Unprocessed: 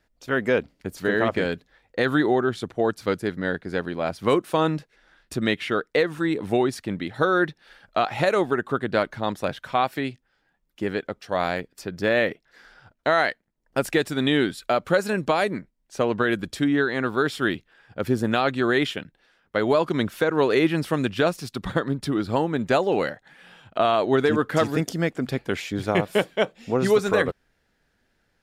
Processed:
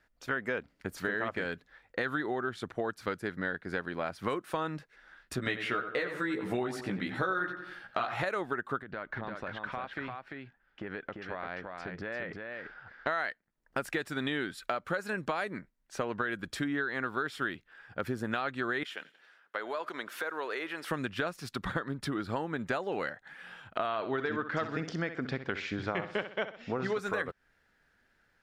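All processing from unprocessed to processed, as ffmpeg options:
-filter_complex "[0:a]asettb=1/sr,asplit=3[a][b][c];[a]atrim=end=5.364[d];[b]atrim=start=5.36:end=8.23,asetpts=PTS-STARTPTS,afade=t=in:d=0.004:c=qsin,afade=t=out:st=2.866:d=0.004:c=qsin,asplit=2[e][f];[f]adelay=16,volume=-2dB[g];[e][g]amix=inputs=2:normalize=0,atrim=end_sample=126567,asplit=2[h][i];[i]adelay=90,lowpass=f=3.1k:p=1,volume=-10dB,asplit=2[j][k];[k]adelay=90,lowpass=f=3.1k:p=1,volume=0.38,asplit=2[l][m];[m]adelay=90,lowpass=f=3.1k:p=1,volume=0.38,asplit=2[n][o];[o]adelay=90,lowpass=f=3.1k:p=1,volume=0.38[p];[h][j][l][n][p]amix=inputs=5:normalize=0,atrim=end_sample=126567[q];[c]atrim=start=8.226[r];[d][q]acrossfade=d=0.004:c1=hsin:c2=qsin[s];[s][r]acrossfade=d=0.004:c1=qsin:c2=hsin,asettb=1/sr,asplit=3[t][u][v];[t]atrim=end=8.824[w];[u]atrim=start=8.82:end=13.07,asetpts=PTS-STARTPTS,afade=t=in:d=0.004:c=qsin,afade=t=out:st=4.246:d=0.004:c=qsin,lowpass=3k,acompressor=threshold=-31dB:ratio=12:attack=3.2:release=140:knee=1:detection=peak,aecho=1:1:345:0.596,atrim=end_sample=187425[x];[v]atrim=start=13.066[y];[w][x]acrossfade=d=0.004:c1=hsin:c2=qsin[z];[z][y]acrossfade=d=0.004:c1=qsin:c2=hsin,asettb=1/sr,asplit=3[aa][ab][ac];[aa]atrim=end=18.834[ad];[ab]atrim=start=18.83:end=20.91,asetpts=PTS-STARTPTS,afade=t=in:d=0.004:c=qsin,afade=t=out:st=2.076:d=0.004:c=qsin,acompressor=threshold=-32dB:ratio=2:attack=3.2:release=140:knee=1:detection=peak,highpass=460,aecho=1:1:90|180|270|360:0.0631|0.0347|0.0191|0.0105,atrim=end_sample=91728[ae];[ac]atrim=start=20.906[af];[ad][ae]acrossfade=d=0.004:c1=hsin:c2=qsin[ag];[ag][af]acrossfade=d=0.004:c1=qsin:c2=hsin,asettb=1/sr,asplit=3[ah][ai][aj];[ah]atrim=end=23.874[ak];[ai]atrim=start=23.87:end=26.97,asetpts=PTS-STARTPTS,afade=t=in:d=0.004:c=qsin,afade=t=out:st=3.096:d=0.004:c=qsin,lowpass=f=5.6k:w=0.5412,lowpass=f=5.6k:w=1.3066,aecho=1:1:63|126|189:0.251|0.0754|0.0226,atrim=end_sample=136710[al];[aj]atrim=start=26.966[am];[ak][al]acrossfade=d=0.004:c1=hsin:c2=qsin[an];[an][am]acrossfade=d=0.004:c1=qsin:c2=hsin,equalizer=f=1.5k:t=o:w=1.3:g=8.5,acompressor=threshold=-26dB:ratio=4,volume=-5dB"

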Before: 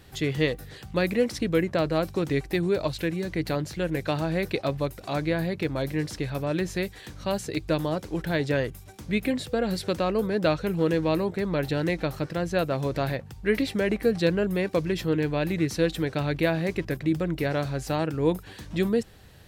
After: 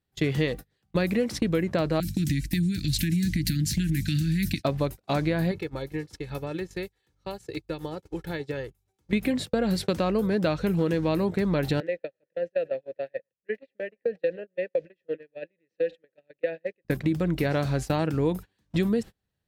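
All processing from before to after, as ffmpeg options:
-filter_complex "[0:a]asettb=1/sr,asplit=3[a][b][c];[a]atrim=end=2.004[d];[b]atrim=start=2:end=4.64,asetpts=PTS-STARTPTS,afade=t=in:d=0.004:c=qsin,afade=t=out:st=2.636:d=0.004:c=qsin,bass=f=250:g=7,treble=f=4k:g=11,acompressor=threshold=-23dB:ratio=12:attack=3.2:release=140:knee=1:detection=peak,asuperstop=centerf=710:order=12:qfactor=0.54[e];[c]atrim=start=4.636[f];[d][e]acrossfade=d=0.004:c1=hsin:c2=qsin[g];[g][f]acrossfade=d=0.004:c1=qsin:c2=hsin,asettb=1/sr,asplit=3[h][i][j];[h]atrim=end=5.514[k];[i]atrim=start=5.51:end=9.13,asetpts=PTS-STARTPTS,afade=t=in:d=0.004:c=qsin,afade=t=out:st=3.616:d=0.004:c=qsin,aecho=1:1:2.3:0.54,atrim=end_sample=159642,acompressor=threshold=-30dB:ratio=16:attack=3.2:release=140:knee=1:detection=peak[l];[j]atrim=start=9.126[m];[k][l]acrossfade=d=0.004:c1=hsin:c2=qsin[n];[n][m]acrossfade=d=0.004:c1=qsin:c2=hsin,asettb=1/sr,asplit=3[o][p][q];[o]atrim=end=11.804[r];[p]atrim=start=11.8:end=16.85,asetpts=PTS-STARTPTS,afade=t=in:d=0.004:c=qsin,afade=t=out:st=5.046:d=0.004:c=qsin,asplit=3[s][t][u];[s]bandpass=f=530:t=q:w=8,volume=0dB[v];[t]bandpass=f=1.84k:t=q:w=8,volume=-6dB[w];[u]bandpass=f=2.48k:t=q:w=8,volume=-9dB[x];[v][w][x]amix=inputs=3:normalize=0,aecho=1:1:117:0.0668,atrim=end_sample=222705[y];[q]atrim=start=16.846[z];[r][y]acrossfade=d=0.004:c1=hsin:c2=qsin[aa];[aa][z]acrossfade=d=0.004:c1=qsin:c2=hsin,agate=range=-37dB:threshold=-33dB:ratio=16:detection=peak,equalizer=f=200:t=o:w=0.77:g=4,acompressor=threshold=-28dB:ratio=4,volume=5.5dB"

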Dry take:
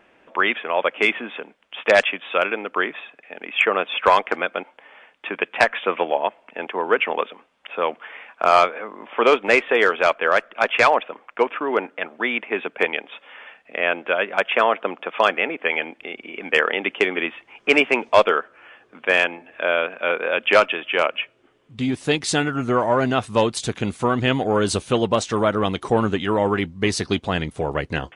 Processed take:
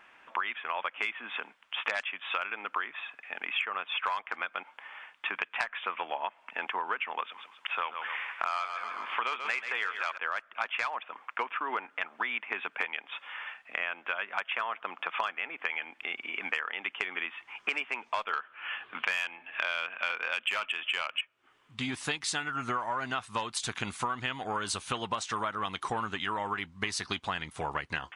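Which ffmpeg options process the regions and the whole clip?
-filter_complex "[0:a]asettb=1/sr,asplit=3[a][b][c];[a]atrim=end=7.244[d];[b]atrim=start=7.24:end=10.18,asetpts=PTS-STARTPTS,afade=t=in:d=0.004:c=qsin,afade=t=out:st=2.936:d=0.004:c=qsin,tiltshelf=f=800:g=-4,aecho=1:1:134|268|402|536:0.316|0.108|0.0366|0.0124,atrim=end_sample=129654[e];[c]atrim=start=10.176[f];[d][e]acrossfade=d=0.004:c1=hsin:c2=qsin[g];[g][f]acrossfade=d=0.004:c1=qsin:c2=hsin,asettb=1/sr,asplit=3[h][i][j];[h]atrim=end=18.334[k];[i]atrim=start=18.33:end=21.21,asetpts=PTS-STARTPTS,afade=t=in:d=0.004:c=qsin,afade=t=out:st=2.876:d=0.004:c=qsin,highshelf=f=4.3k:t=q:w=3:g=-11.5,acontrast=64[l];[j]atrim=start=21.206[m];[k][l]acrossfade=d=0.004:c1=hsin:c2=qsin[n];[n][m]acrossfade=d=0.004:c1=qsin:c2=hsin,lowshelf=f=730:t=q:w=1.5:g=-10.5,acompressor=threshold=-29dB:ratio=10"

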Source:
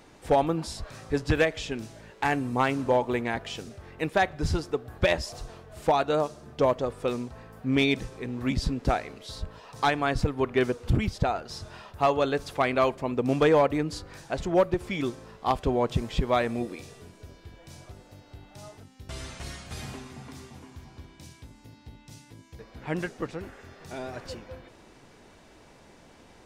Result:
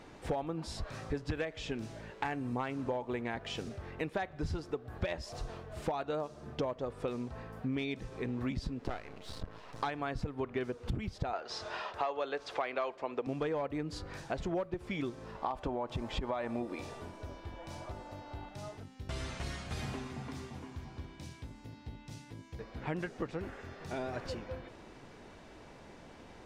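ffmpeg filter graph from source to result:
-filter_complex "[0:a]asettb=1/sr,asplit=3[a][b][c];[a]atrim=end=8.854[d];[b]atrim=start=8.85:end=9.83,asetpts=PTS-STARTPTS,afade=t=in:d=0.004:c=qsin,afade=t=out:st=0.976:d=0.004:c=qsin,highpass=43,highshelf=f=11k:g=-5.5,aeval=exprs='max(val(0),0)':c=same[e];[c]atrim=start=9.826[f];[d][e]acrossfade=d=0.004:c1=hsin:c2=qsin[g];[g][f]acrossfade=d=0.004:c1=qsin:c2=hsin,asettb=1/sr,asplit=3[h][i][j];[h]atrim=end=11.334[k];[i]atrim=start=11.33:end=13.27,asetpts=PTS-STARTPTS,afade=t=in:d=0.004:c=qsin,afade=t=out:st=1.936:d=0.004:c=qsin,acrossover=split=360 7400:gain=0.1 1 0.141[l][m][n];[l][m][n]amix=inputs=3:normalize=0,acontrast=74[o];[j]atrim=start=13.266[p];[k][o]acrossfade=d=0.004:c1=hsin:c2=qsin[q];[q][p]acrossfade=d=0.004:c1=qsin:c2=hsin,asettb=1/sr,asplit=3[r][s][t];[r]atrim=end=15.354[u];[s]atrim=start=15.35:end=18.49,asetpts=PTS-STARTPTS,afade=t=in:d=0.004:c=qsin,afade=t=out:st=3.136:d=0.004:c=qsin,equalizer=f=880:w=1.2:g=9,aecho=1:1:3.4:0.3,atrim=end_sample=138474,acompressor=threshold=-21dB:ratio=3:attack=3.2:release=140:knee=1:detection=peak[v];[t]atrim=start=18.486[w];[u][v]acrossfade=d=0.004:c1=hsin:c2=qsin[x];[x][w]acrossfade=d=0.004:c1=qsin:c2=hsin,acompressor=threshold=-34dB:ratio=6,lowpass=f=3.8k:p=1,volume=1dB"

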